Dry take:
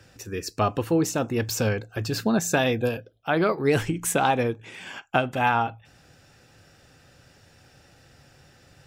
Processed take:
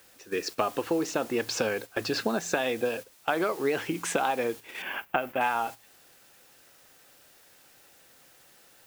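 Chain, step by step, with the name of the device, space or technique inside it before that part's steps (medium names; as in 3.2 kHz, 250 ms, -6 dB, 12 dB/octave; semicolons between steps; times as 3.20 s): baby monitor (band-pass 330–4500 Hz; compression 6:1, threshold -29 dBFS, peak gain reduction 12 dB; white noise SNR 17 dB; gate -42 dBFS, range -10 dB); 4.82–5.41 s: high-order bell 6 kHz -12 dB; trim +5 dB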